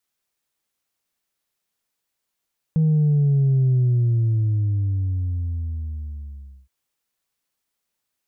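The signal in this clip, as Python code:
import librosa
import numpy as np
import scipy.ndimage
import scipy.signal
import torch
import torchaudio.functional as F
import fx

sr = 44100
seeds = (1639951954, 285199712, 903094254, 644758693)

y = fx.sub_drop(sr, level_db=-15.0, start_hz=160.0, length_s=3.92, drive_db=1, fade_s=2.96, end_hz=65.0)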